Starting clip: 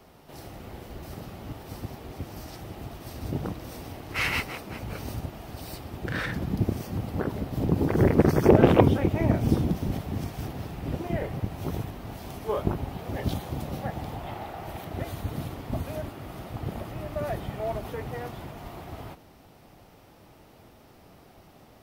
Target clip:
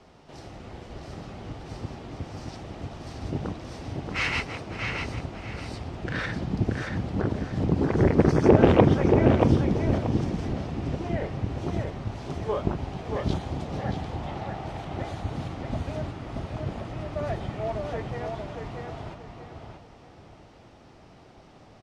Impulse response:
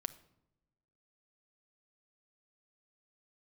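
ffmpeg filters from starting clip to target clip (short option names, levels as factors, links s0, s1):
-filter_complex "[0:a]lowpass=f=7400:w=0.5412,lowpass=f=7400:w=1.3066,asplit=2[s0][s1];[s1]adelay=631,lowpass=f=4500:p=1,volume=0.631,asplit=2[s2][s3];[s3]adelay=631,lowpass=f=4500:p=1,volume=0.3,asplit=2[s4][s5];[s5]adelay=631,lowpass=f=4500:p=1,volume=0.3,asplit=2[s6][s7];[s7]adelay=631,lowpass=f=4500:p=1,volume=0.3[s8];[s0][s2][s4][s6][s8]amix=inputs=5:normalize=0"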